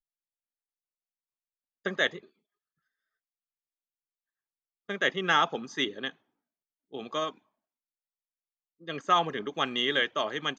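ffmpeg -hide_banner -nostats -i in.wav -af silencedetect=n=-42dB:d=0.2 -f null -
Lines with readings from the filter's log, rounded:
silence_start: 0.00
silence_end: 1.85 | silence_duration: 1.85
silence_start: 2.19
silence_end: 4.89 | silence_duration: 2.70
silence_start: 6.10
silence_end: 6.93 | silence_duration: 0.83
silence_start: 7.30
silence_end: 8.88 | silence_duration: 1.57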